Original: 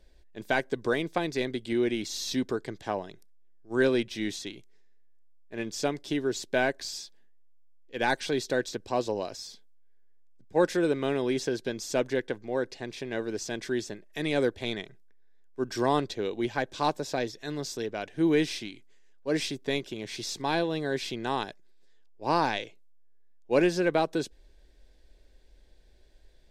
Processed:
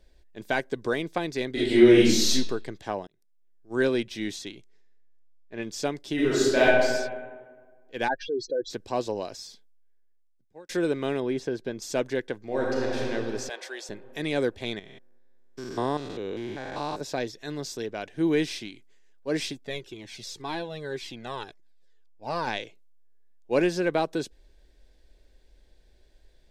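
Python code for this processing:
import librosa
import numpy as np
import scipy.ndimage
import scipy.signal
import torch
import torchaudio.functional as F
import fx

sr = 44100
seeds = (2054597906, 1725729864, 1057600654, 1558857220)

y = fx.reverb_throw(x, sr, start_s=1.52, length_s=0.78, rt60_s=0.82, drr_db=-11.5)
y = fx.lowpass(y, sr, hz=fx.line((4.52, 10000.0), (5.61, 5000.0)), slope=12, at=(4.52, 5.61), fade=0.02)
y = fx.reverb_throw(y, sr, start_s=6.14, length_s=0.49, rt60_s=1.5, drr_db=-8.5)
y = fx.spec_expand(y, sr, power=3.2, at=(8.07, 8.69), fade=0.02)
y = fx.high_shelf(y, sr, hz=2700.0, db=-10.5, at=(11.2, 11.82))
y = fx.reverb_throw(y, sr, start_s=12.4, length_s=0.58, rt60_s=3.0, drr_db=-5.0)
y = fx.highpass(y, sr, hz=520.0, slope=24, at=(13.49, 13.89))
y = fx.spec_steps(y, sr, hold_ms=200, at=(14.79, 17.01))
y = fx.comb_cascade(y, sr, direction='falling', hz=1.9, at=(19.52, 22.46), fade=0.02)
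y = fx.edit(y, sr, fx.fade_in_span(start_s=3.07, length_s=0.71),
    fx.fade_out_span(start_s=9.36, length_s=1.33), tone=tone)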